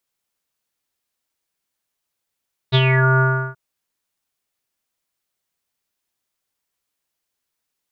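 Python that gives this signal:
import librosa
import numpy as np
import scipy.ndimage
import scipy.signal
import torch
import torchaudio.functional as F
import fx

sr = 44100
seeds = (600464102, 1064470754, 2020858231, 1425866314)

y = fx.sub_voice(sr, note=48, wave='square', cutoff_hz=1400.0, q=9.6, env_oct=1.5, env_s=0.33, attack_ms=29.0, decay_s=0.05, sustain_db=-3.5, release_s=0.35, note_s=0.48, slope=24)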